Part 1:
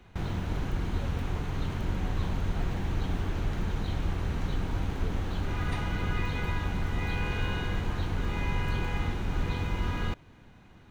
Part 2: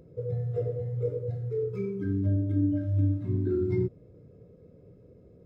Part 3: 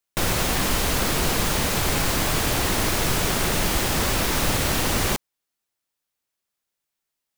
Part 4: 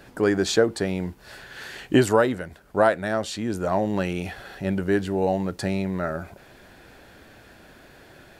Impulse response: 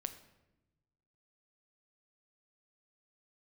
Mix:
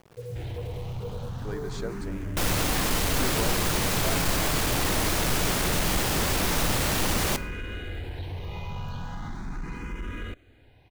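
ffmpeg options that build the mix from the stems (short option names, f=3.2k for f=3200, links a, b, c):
-filter_complex "[0:a]asplit=2[a][b];[b]afreqshift=0.39[c];[a][c]amix=inputs=2:normalize=1,adelay=200,volume=0.5dB[d];[1:a]acrusher=bits=7:mix=0:aa=0.000001,volume=-4.5dB[e];[2:a]adelay=2200,volume=-2dB,asplit=2[f][g];[g]volume=-4.5dB[h];[3:a]adelay=1250,volume=-17dB[i];[d][e][f]amix=inputs=3:normalize=0,asoftclip=type=tanh:threshold=-24.5dB,alimiter=level_in=3.5dB:limit=-24dB:level=0:latency=1:release=55,volume=-3.5dB,volume=0dB[j];[4:a]atrim=start_sample=2205[k];[h][k]afir=irnorm=-1:irlink=0[l];[i][j][l]amix=inputs=3:normalize=0"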